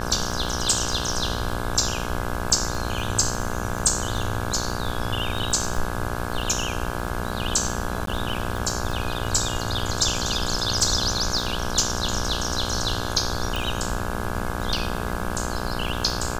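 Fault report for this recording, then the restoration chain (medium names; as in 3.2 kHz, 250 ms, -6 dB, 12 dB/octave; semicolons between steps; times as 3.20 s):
buzz 60 Hz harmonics 28 -30 dBFS
crackle 21 per s -28 dBFS
8.06–8.07 s: dropout 13 ms
13.56 s: pop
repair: de-click; de-hum 60 Hz, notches 28; interpolate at 8.06 s, 13 ms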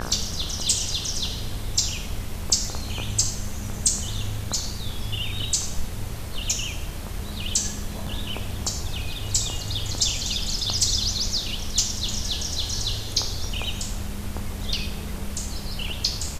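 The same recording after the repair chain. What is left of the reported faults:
nothing left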